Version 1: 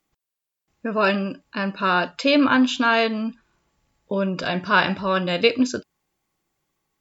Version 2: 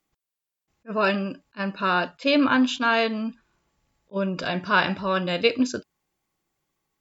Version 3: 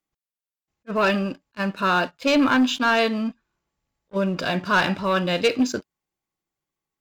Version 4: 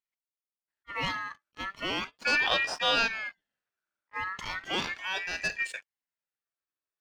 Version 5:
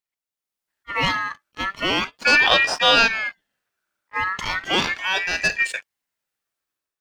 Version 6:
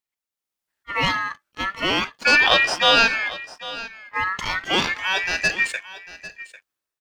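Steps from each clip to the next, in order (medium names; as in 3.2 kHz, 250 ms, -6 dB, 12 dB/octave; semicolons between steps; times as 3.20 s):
attacks held to a fixed rise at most 500 dB/s; trim -2.5 dB
waveshaping leveller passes 2; trim -4.5 dB
time-frequency box 2.07–3.35 s, 280–3300 Hz +6 dB; ring modulator with a swept carrier 1.8 kHz, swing 20%, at 0.37 Hz; trim -9 dB
level rider gain up to 8 dB; trim +2.5 dB
delay 798 ms -16.5 dB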